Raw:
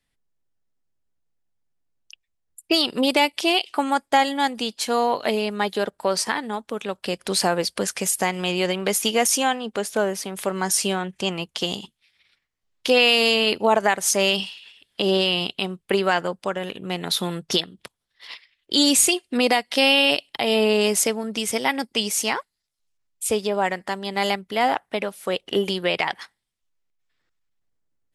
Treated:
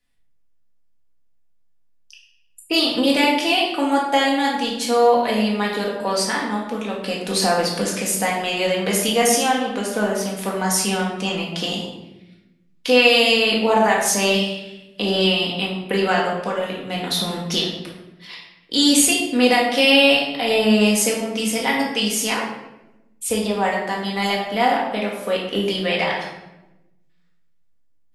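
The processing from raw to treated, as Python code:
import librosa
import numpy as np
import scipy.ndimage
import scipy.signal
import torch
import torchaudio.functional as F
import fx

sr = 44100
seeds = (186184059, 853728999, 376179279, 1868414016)

y = fx.room_shoebox(x, sr, seeds[0], volume_m3=370.0, walls='mixed', distance_m=1.9)
y = F.gain(torch.from_numpy(y), -2.5).numpy()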